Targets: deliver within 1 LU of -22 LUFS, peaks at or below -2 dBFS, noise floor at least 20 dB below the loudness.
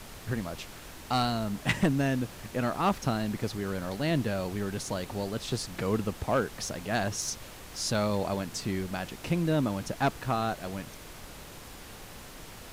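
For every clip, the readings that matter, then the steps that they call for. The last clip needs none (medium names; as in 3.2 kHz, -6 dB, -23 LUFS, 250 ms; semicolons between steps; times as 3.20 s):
clipped samples 0.2%; clipping level -18.5 dBFS; noise floor -46 dBFS; noise floor target -51 dBFS; loudness -31.0 LUFS; peak level -18.5 dBFS; loudness target -22.0 LUFS
-> clip repair -18.5 dBFS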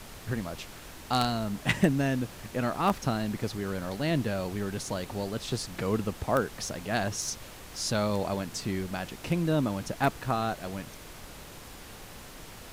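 clipped samples 0.0%; noise floor -46 dBFS; noise floor target -51 dBFS
-> noise print and reduce 6 dB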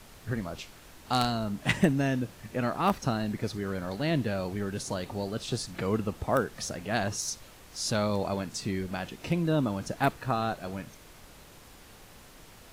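noise floor -52 dBFS; loudness -31.0 LUFS; peak level -9.5 dBFS; loudness target -22.0 LUFS
-> trim +9 dB; peak limiter -2 dBFS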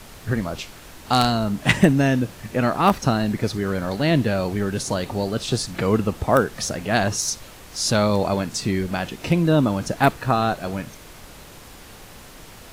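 loudness -22.0 LUFS; peak level -2.0 dBFS; noise floor -43 dBFS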